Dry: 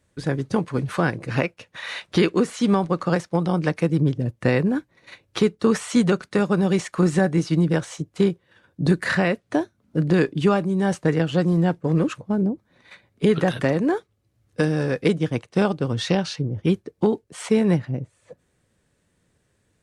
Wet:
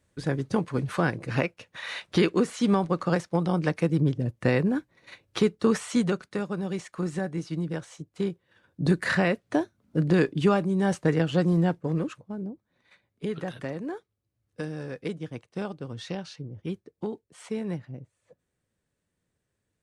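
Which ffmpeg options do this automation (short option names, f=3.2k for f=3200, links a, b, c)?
-af "volume=4.5dB,afade=t=out:st=5.67:d=0.81:silence=0.421697,afade=t=in:st=8.11:d=0.94:silence=0.398107,afade=t=out:st=11.58:d=0.66:silence=0.316228"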